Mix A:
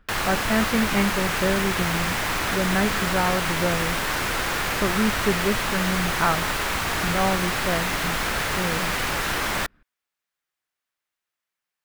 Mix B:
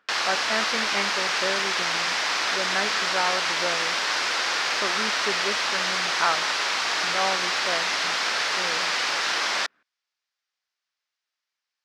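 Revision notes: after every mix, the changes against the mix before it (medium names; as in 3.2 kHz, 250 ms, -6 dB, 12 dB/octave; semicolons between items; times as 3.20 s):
background: add resonant low-pass 5.2 kHz, resonance Q 2.3; master: add Bessel high-pass 610 Hz, order 2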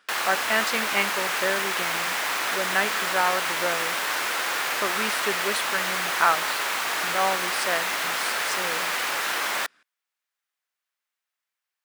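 speech: remove tape spacing loss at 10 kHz 30 dB; background: remove resonant low-pass 5.2 kHz, resonance Q 2.3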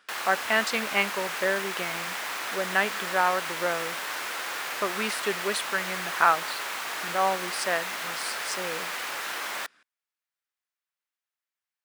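background -6.5 dB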